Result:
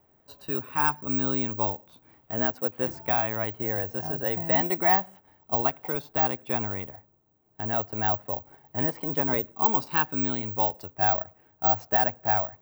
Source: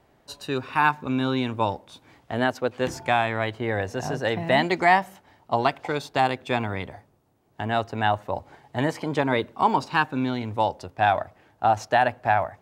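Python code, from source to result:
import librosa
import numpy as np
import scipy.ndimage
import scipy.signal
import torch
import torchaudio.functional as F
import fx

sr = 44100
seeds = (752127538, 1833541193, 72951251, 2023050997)

y = fx.high_shelf(x, sr, hz=2400.0, db=fx.steps((0.0, -10.0), (9.64, -2.0), (10.92, -9.5)))
y = (np.kron(y[::2], np.eye(2)[0]) * 2)[:len(y)]
y = y * librosa.db_to_amplitude(-5.0)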